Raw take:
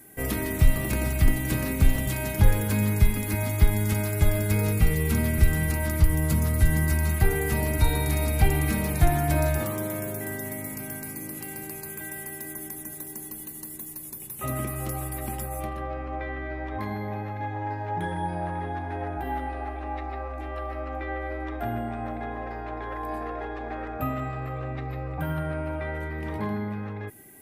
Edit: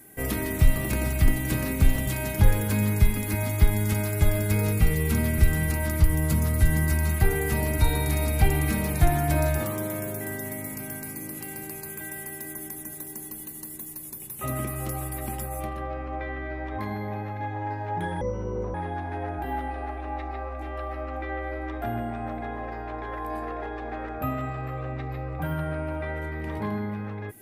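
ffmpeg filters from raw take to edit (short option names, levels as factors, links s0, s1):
-filter_complex "[0:a]asplit=3[s0][s1][s2];[s0]atrim=end=18.214[s3];[s1]atrim=start=18.21:end=18.53,asetpts=PTS-STARTPTS,asetrate=26460,aresample=44100[s4];[s2]atrim=start=18.526[s5];[s3][s4]acrossfade=d=0.004:c1=hsin:c2=hsin[s6];[s6][s5]acrossfade=d=0.004:c1=hsin:c2=hsin"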